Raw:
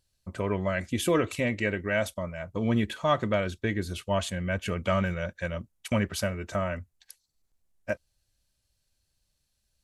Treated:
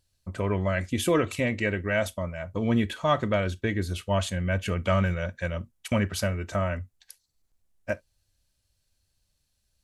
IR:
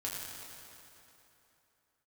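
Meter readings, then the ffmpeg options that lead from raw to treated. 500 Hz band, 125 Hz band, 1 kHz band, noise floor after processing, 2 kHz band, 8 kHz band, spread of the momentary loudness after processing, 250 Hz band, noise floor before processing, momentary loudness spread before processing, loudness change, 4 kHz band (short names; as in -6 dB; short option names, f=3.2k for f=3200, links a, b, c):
+1.0 dB, +3.5 dB, +1.0 dB, -75 dBFS, +1.0 dB, +1.0 dB, 10 LU, +1.5 dB, -77 dBFS, 10 LU, +1.5 dB, +1.0 dB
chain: -filter_complex "[0:a]asplit=2[a][b];[1:a]atrim=start_sample=2205,atrim=end_sample=3087,lowshelf=f=210:g=9[c];[b][c]afir=irnorm=-1:irlink=0,volume=-13.5dB[d];[a][d]amix=inputs=2:normalize=0"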